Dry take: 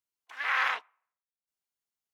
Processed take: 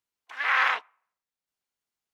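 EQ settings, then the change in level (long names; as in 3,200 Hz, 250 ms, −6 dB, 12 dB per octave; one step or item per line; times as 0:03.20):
high-shelf EQ 6,900 Hz −7 dB
+5.0 dB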